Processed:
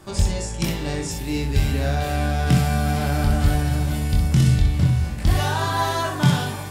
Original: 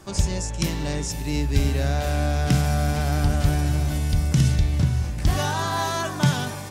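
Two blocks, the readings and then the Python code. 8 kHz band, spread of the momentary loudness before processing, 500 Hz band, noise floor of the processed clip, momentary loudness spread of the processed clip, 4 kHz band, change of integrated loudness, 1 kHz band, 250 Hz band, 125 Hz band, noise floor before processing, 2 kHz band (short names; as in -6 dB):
-1.0 dB, 5 LU, +1.5 dB, -30 dBFS, 7 LU, +1.5 dB, +2.0 dB, +2.5 dB, +2.0 dB, +2.0 dB, -31 dBFS, +2.0 dB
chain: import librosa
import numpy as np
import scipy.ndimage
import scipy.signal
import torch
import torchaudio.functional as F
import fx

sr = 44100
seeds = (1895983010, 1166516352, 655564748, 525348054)

y = fx.peak_eq(x, sr, hz=6100.0, db=-6.0, octaves=0.38)
y = fx.room_early_taps(y, sr, ms=(23, 63), db=(-4.0, -5.5))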